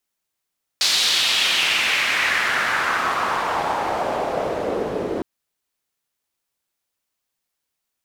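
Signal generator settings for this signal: swept filtered noise pink, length 4.41 s bandpass, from 4500 Hz, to 370 Hz, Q 2.4, exponential, gain ramp -7 dB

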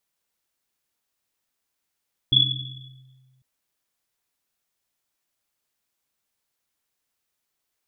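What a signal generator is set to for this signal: Risset drum, pitch 130 Hz, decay 1.80 s, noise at 3400 Hz, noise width 110 Hz, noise 65%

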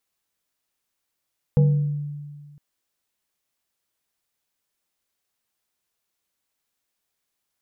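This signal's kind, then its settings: FM tone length 1.01 s, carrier 146 Hz, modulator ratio 2.31, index 0.58, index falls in 0.92 s exponential, decay 1.78 s, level -11.5 dB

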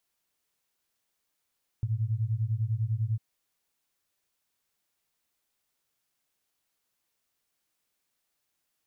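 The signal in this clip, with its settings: beating tones 106 Hz, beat 10 Hz, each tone -29 dBFS 1.35 s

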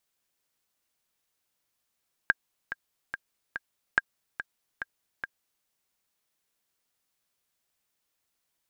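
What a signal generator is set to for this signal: metronome 143 bpm, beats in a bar 4, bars 2, 1610 Hz, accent 12 dB -7.5 dBFS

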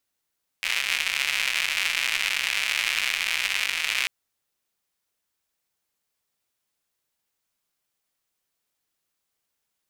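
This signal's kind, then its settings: rain from filtered ticks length 3.44 s, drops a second 190, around 2400 Hz, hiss -28.5 dB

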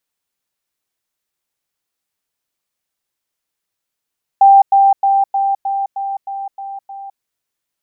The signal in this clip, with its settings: level ladder 788 Hz -3.5 dBFS, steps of -3 dB, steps 9, 0.21 s 0.10 s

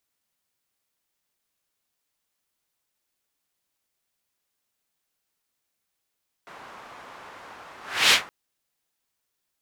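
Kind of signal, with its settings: whoosh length 1.82 s, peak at 1.65, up 0.33 s, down 0.15 s, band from 1100 Hz, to 3200 Hz, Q 1.3, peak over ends 28 dB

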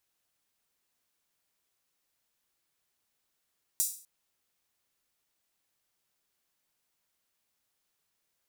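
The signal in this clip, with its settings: open hi-hat length 0.25 s, high-pass 7300 Hz, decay 0.43 s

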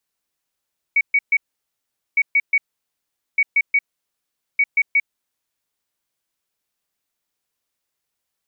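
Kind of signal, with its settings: beep pattern sine 2250 Hz, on 0.05 s, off 0.13 s, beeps 3, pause 0.80 s, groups 4, -12 dBFS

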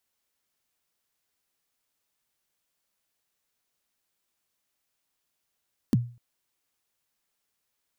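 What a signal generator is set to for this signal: kick drum length 0.25 s, from 300 Hz, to 120 Hz, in 27 ms, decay 0.37 s, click on, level -14.5 dB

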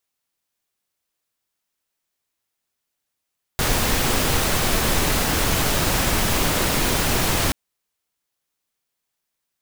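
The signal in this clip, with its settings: noise pink, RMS -20 dBFS 3.93 s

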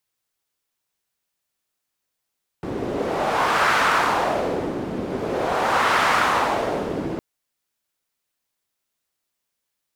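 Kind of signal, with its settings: wind-like swept noise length 4.56 s, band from 310 Hz, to 1300 Hz, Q 1.7, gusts 2, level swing 8.5 dB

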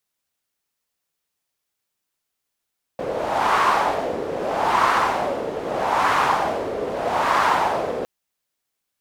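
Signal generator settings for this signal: wind-like swept noise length 5.06 s, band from 470 Hz, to 1100 Hz, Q 2.7, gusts 4, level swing 9 dB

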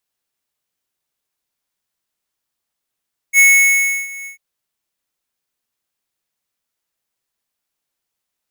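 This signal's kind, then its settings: ADSR square 2200 Hz, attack 57 ms, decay 0.686 s, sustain -22 dB, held 0.93 s, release 0.115 s -8 dBFS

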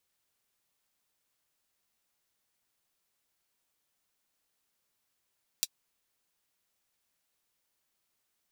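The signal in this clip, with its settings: closed hi-hat, high-pass 4000 Hz, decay 0.05 s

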